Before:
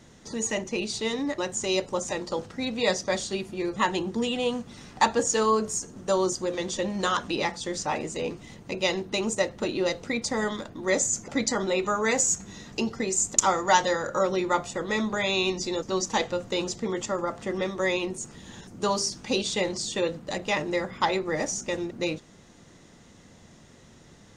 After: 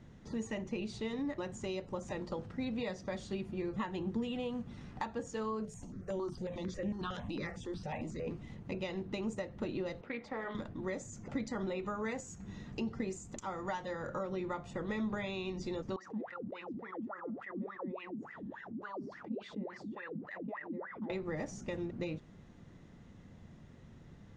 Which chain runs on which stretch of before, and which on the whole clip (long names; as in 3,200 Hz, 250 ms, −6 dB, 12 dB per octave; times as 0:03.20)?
0:05.65–0:08.27: transient designer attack −3 dB, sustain +4 dB + step-sequenced phaser 11 Hz 290–4,300 Hz
0:10.01–0:10.55: three-way crossover with the lows and the highs turned down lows −16 dB, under 330 Hz, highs −21 dB, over 3,600 Hz + hum removal 71.01 Hz, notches 32 + highs frequency-modulated by the lows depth 0.1 ms
0:15.96–0:21.10: LFO wah 3.5 Hz 210–2,000 Hz, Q 15 + envelope flattener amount 70%
whole clip: downward compressor 6 to 1, threshold −28 dBFS; bass and treble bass +9 dB, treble −13 dB; level −8 dB